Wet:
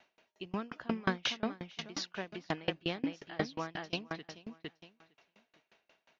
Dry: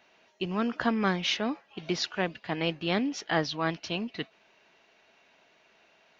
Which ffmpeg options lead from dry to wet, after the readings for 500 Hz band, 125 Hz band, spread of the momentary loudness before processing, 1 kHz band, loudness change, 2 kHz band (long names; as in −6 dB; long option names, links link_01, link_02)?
−7.5 dB, −7.5 dB, 10 LU, −8.0 dB, −8.0 dB, −7.5 dB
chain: -af "aecho=1:1:458|916|1374:0.447|0.107|0.0257,aeval=exprs='val(0)*pow(10,-30*if(lt(mod(5.6*n/s,1),2*abs(5.6)/1000),1-mod(5.6*n/s,1)/(2*abs(5.6)/1000),(mod(5.6*n/s,1)-2*abs(5.6)/1000)/(1-2*abs(5.6)/1000))/20)':channel_layout=same"